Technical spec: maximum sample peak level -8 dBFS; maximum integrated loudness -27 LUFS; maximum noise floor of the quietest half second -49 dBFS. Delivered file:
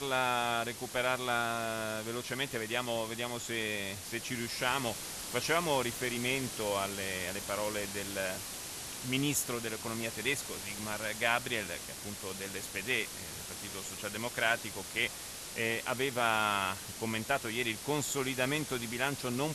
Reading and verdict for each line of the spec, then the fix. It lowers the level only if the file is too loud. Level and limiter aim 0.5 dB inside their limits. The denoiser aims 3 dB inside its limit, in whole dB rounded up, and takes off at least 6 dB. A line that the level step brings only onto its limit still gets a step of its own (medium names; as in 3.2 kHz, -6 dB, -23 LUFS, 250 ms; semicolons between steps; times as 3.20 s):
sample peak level -13.5 dBFS: pass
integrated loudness -34.0 LUFS: pass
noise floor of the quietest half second -44 dBFS: fail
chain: noise reduction 8 dB, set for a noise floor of -44 dBFS